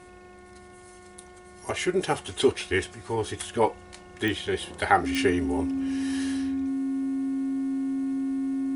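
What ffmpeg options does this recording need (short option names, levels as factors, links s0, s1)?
-af "adeclick=t=4,bandreject=f=361.6:t=h:w=4,bandreject=f=723.2:t=h:w=4,bandreject=f=1084.8:t=h:w=4,bandreject=f=1446.4:t=h:w=4,bandreject=f=1808:t=h:w=4,bandreject=f=2169.6:t=h:w=4,bandreject=f=270:w=30"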